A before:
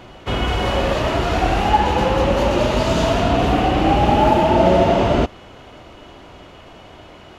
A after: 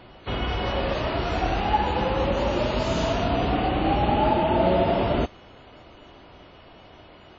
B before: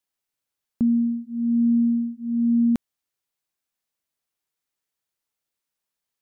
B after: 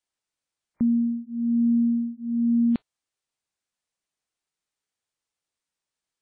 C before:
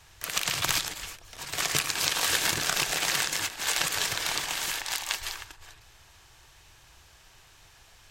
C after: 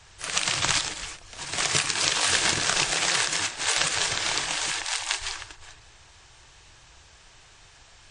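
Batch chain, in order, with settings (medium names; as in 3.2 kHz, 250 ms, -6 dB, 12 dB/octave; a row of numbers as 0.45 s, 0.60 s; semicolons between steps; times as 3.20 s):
WMA 32 kbps 22.05 kHz; normalise loudness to -24 LUFS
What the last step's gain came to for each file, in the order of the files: -7.0 dB, -1.5 dB, +2.5 dB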